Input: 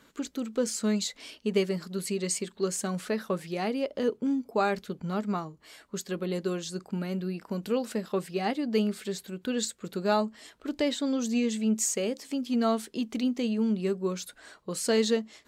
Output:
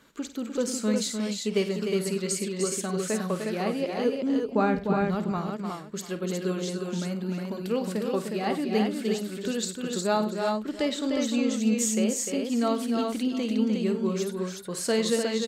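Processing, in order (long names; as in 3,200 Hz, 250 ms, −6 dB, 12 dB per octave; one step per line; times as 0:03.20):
0:04.42–0:05.02: bass and treble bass +12 dB, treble −13 dB
on a send: multi-tap delay 51/98/301/361/688 ms −12.5/−17/−6.5/−4/−18 dB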